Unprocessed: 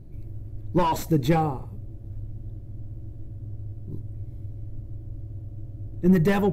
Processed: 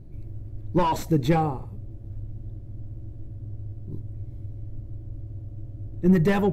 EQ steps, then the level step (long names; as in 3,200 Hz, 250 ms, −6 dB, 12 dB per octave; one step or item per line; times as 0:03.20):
high-shelf EQ 11,000 Hz −8 dB
0.0 dB